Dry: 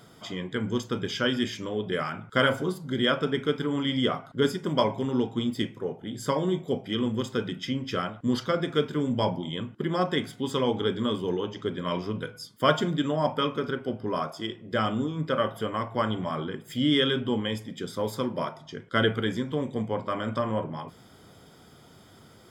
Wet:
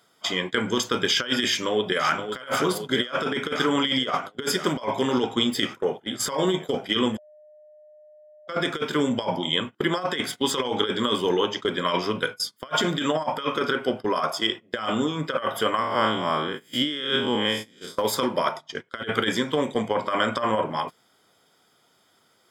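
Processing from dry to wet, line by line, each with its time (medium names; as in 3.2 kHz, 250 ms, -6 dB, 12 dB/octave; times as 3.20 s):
1.47–2.30 s: echo throw 520 ms, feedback 75%, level -8 dB
7.18–8.48 s: bleep 606 Hz -10.5 dBFS
15.79–17.98 s: spectral blur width 120 ms
whole clip: high-pass 850 Hz 6 dB/octave; gate -44 dBFS, range -19 dB; compressor with a negative ratio -34 dBFS, ratio -0.5; trim +8.5 dB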